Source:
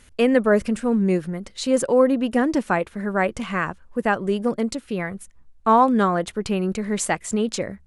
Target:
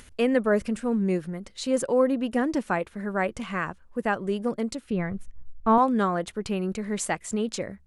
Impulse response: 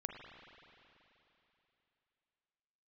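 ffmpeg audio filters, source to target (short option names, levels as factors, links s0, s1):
-filter_complex "[0:a]asettb=1/sr,asplit=3[s0][s1][s2];[s0]atrim=end=4.904[s3];[s1]atrim=start=4.9:end=5.78,asetpts=PTS-STARTPTS,afade=t=in:d=0.004:c=qsin,afade=t=out:st=0.876:d=0.004:c=qsin,aemphasis=mode=reproduction:type=bsi[s4];[s2]atrim=start=5.776[s5];[s3][s4]acrossfade=d=0.004:c1=hsin:c2=qsin[s6];[s6][s5]acrossfade=d=0.004:c1=qsin:c2=hsin,acompressor=mode=upward:threshold=0.0126:ratio=2.5,volume=0.562"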